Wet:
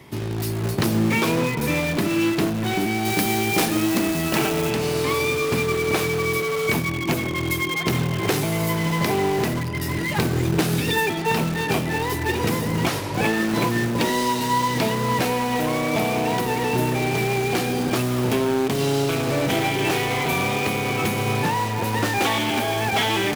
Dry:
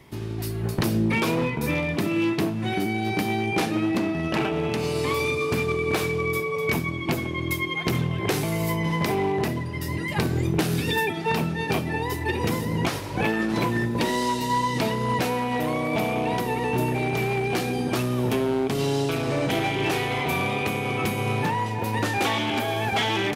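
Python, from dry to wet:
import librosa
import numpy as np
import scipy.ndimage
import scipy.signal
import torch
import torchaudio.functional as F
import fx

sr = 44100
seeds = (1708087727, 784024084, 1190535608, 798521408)

p1 = scipy.signal.sosfilt(scipy.signal.butter(2, 74.0, 'highpass', fs=sr, output='sos'), x)
p2 = (np.mod(10.0 ** (24.5 / 20.0) * p1 + 1.0, 2.0) - 1.0) / 10.0 ** (24.5 / 20.0)
p3 = p1 + (p2 * librosa.db_to_amplitude(-8.0))
p4 = fx.high_shelf(p3, sr, hz=6500.0, db=10.5, at=(3.05, 4.71))
y = p4 * librosa.db_to_amplitude(2.5)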